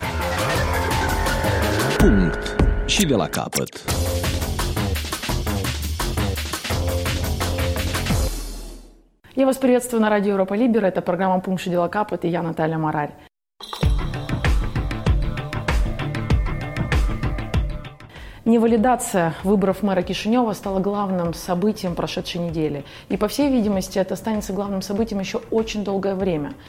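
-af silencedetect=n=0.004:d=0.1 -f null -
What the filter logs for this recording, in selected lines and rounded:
silence_start: 9.04
silence_end: 9.24 | silence_duration: 0.20
silence_start: 13.27
silence_end: 13.60 | silence_duration: 0.33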